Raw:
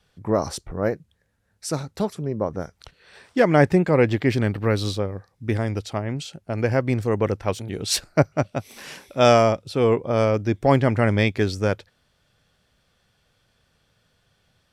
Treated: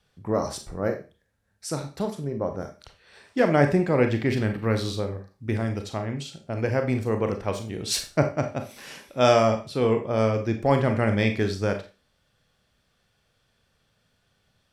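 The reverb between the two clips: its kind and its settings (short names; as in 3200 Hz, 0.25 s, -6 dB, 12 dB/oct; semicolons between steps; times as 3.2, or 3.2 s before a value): Schroeder reverb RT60 0.32 s, combs from 28 ms, DRR 5.5 dB; gain -4 dB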